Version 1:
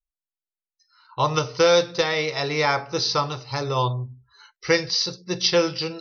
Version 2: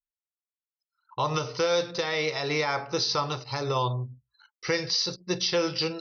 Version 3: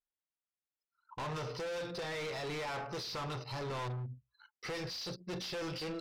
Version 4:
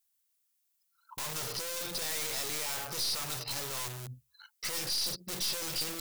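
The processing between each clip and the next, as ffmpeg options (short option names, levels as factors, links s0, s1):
-af "highpass=f=110:p=1,anlmdn=0.0631,alimiter=limit=0.15:level=0:latency=1:release=105"
-af "volume=59.6,asoftclip=hard,volume=0.0168,adynamicsmooth=sensitivity=6:basefreq=3800,volume=0.841"
-filter_complex "[0:a]asplit=2[s0][s1];[s1]aeval=exprs='(mod(84.1*val(0)+1,2)-1)/84.1':c=same,volume=0.501[s2];[s0][s2]amix=inputs=2:normalize=0,crystalizer=i=5.5:c=0,aeval=exprs='clip(val(0),-1,0.0211)':c=same,volume=0.75"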